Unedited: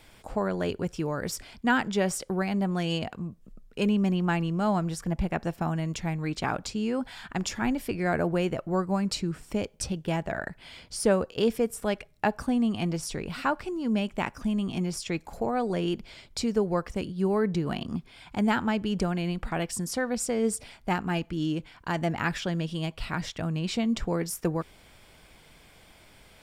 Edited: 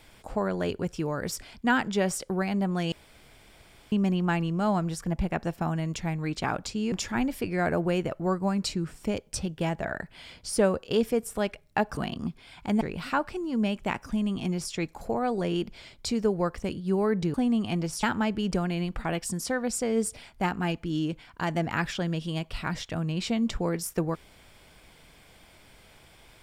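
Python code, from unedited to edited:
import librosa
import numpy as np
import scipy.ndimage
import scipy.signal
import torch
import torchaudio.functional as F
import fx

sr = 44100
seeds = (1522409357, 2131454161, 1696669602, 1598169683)

y = fx.edit(x, sr, fx.room_tone_fill(start_s=2.92, length_s=1.0),
    fx.cut(start_s=6.92, length_s=0.47),
    fx.swap(start_s=12.44, length_s=0.69, other_s=17.66, other_length_s=0.84), tone=tone)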